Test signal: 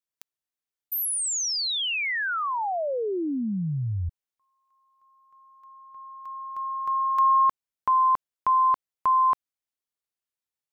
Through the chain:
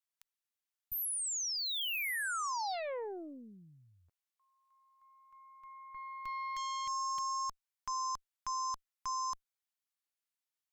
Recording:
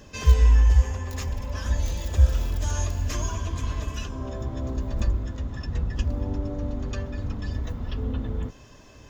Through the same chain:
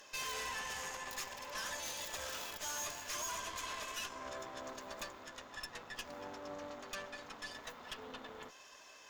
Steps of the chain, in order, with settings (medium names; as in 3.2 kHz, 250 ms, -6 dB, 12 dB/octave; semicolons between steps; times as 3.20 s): high-pass 830 Hz 12 dB/octave; peak limiter -28.5 dBFS; Chebyshev shaper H 5 -12 dB, 6 -12 dB, 7 -19 dB, 8 -42 dB, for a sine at -28.5 dBFS; trim -5 dB